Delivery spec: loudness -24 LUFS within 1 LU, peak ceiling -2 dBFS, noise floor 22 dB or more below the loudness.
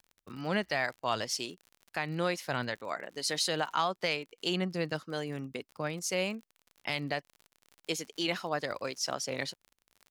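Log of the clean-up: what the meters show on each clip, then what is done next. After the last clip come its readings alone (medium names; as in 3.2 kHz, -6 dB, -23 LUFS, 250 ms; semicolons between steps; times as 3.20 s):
tick rate 47 per s; loudness -34.0 LUFS; peak level -17.0 dBFS; loudness target -24.0 LUFS
-> de-click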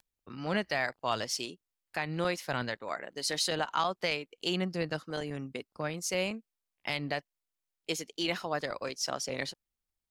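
tick rate 0.40 per s; loudness -34.0 LUFS; peak level -17.0 dBFS; loudness target -24.0 LUFS
-> trim +10 dB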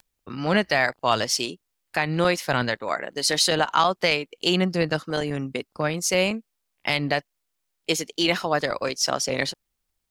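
loudness -24.0 LUFS; peak level -7.0 dBFS; noise floor -78 dBFS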